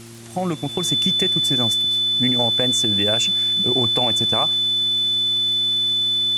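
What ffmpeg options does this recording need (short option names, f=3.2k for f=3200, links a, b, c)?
-af "adeclick=t=4,bandreject=f=115.5:t=h:w=4,bandreject=f=231:t=h:w=4,bandreject=f=346.5:t=h:w=4,bandreject=f=3.5k:w=30,afwtdn=0.0071"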